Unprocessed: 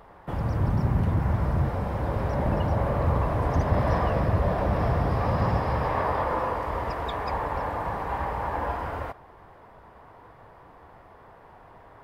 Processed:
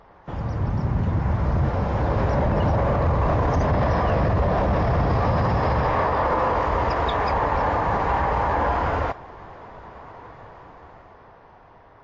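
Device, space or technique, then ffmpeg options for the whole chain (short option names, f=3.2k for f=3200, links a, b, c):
low-bitrate web radio: -af "dynaudnorm=f=320:g=11:m=10dB,alimiter=limit=-13dB:level=0:latency=1:release=17" -ar 16000 -c:a libmp3lame -b:a 32k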